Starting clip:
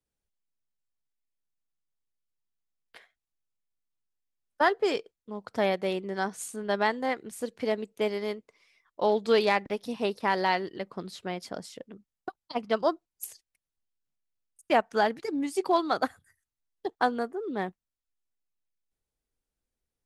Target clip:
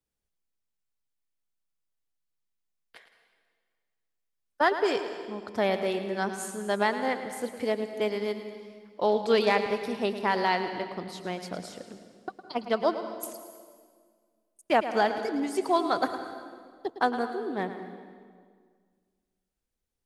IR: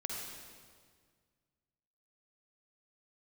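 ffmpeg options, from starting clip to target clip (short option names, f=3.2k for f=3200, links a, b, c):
-filter_complex "[0:a]asplit=2[a][b];[1:a]atrim=start_sample=2205,adelay=109[c];[b][c]afir=irnorm=-1:irlink=0,volume=-9dB[d];[a][d]amix=inputs=2:normalize=0"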